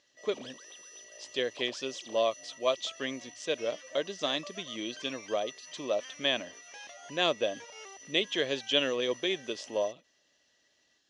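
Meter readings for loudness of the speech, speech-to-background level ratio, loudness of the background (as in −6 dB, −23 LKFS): −32.5 LKFS, 15.0 dB, −47.5 LKFS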